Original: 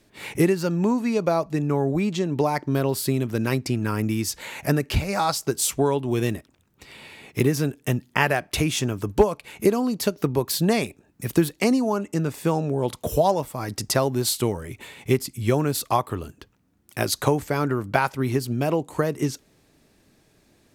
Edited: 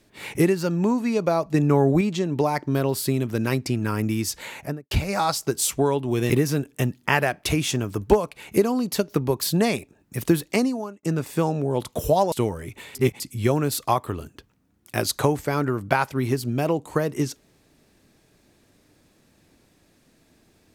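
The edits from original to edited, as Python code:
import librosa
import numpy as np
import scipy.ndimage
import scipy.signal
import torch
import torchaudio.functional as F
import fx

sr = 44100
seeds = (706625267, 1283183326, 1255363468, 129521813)

y = fx.studio_fade_out(x, sr, start_s=4.46, length_s=0.45)
y = fx.edit(y, sr, fx.clip_gain(start_s=1.54, length_s=0.47, db=4.5),
    fx.cut(start_s=6.3, length_s=1.08),
    fx.fade_out_span(start_s=11.61, length_s=0.5),
    fx.cut(start_s=13.4, length_s=0.95),
    fx.reverse_span(start_s=14.98, length_s=0.25), tone=tone)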